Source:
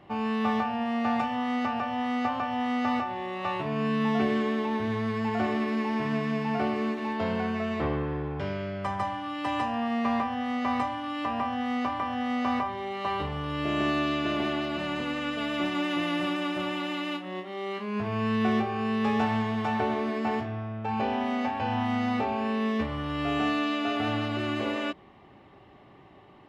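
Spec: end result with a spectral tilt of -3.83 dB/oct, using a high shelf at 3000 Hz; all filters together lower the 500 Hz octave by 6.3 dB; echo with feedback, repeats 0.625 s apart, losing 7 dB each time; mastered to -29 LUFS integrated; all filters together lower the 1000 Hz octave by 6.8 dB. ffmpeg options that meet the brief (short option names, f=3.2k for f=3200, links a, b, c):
-af "equalizer=f=500:t=o:g=-6.5,equalizer=f=1k:t=o:g=-7,highshelf=f=3k:g=3.5,aecho=1:1:625|1250|1875|2500|3125:0.447|0.201|0.0905|0.0407|0.0183,volume=2dB"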